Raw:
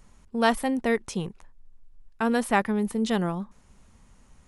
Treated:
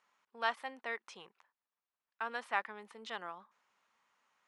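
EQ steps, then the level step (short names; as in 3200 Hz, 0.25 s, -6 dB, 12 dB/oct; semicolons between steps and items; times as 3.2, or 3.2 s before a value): ladder band-pass 1500 Hz, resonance 35%; bell 1300 Hz -9.5 dB 1.9 oct; +9.5 dB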